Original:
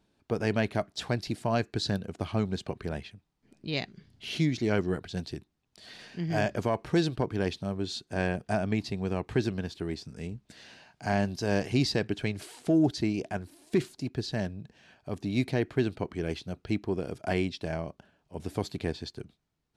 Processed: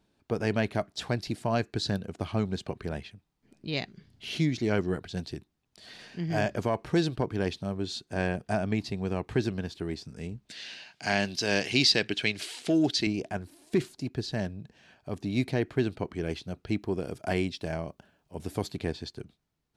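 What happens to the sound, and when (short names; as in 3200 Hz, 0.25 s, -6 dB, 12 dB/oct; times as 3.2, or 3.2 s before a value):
10.49–13.07 weighting filter D
16.79–18.67 high shelf 10000 Hz +8.5 dB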